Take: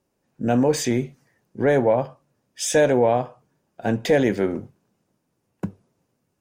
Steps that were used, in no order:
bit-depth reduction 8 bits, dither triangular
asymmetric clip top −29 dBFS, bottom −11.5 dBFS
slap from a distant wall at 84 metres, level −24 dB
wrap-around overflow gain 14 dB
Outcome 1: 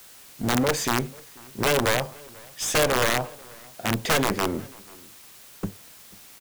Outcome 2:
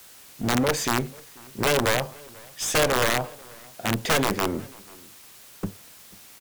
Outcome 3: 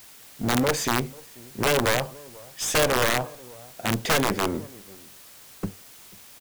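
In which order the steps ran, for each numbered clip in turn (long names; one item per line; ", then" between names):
asymmetric clip, then bit-depth reduction, then wrap-around overflow, then slap from a distant wall
bit-depth reduction, then asymmetric clip, then wrap-around overflow, then slap from a distant wall
asymmetric clip, then slap from a distant wall, then bit-depth reduction, then wrap-around overflow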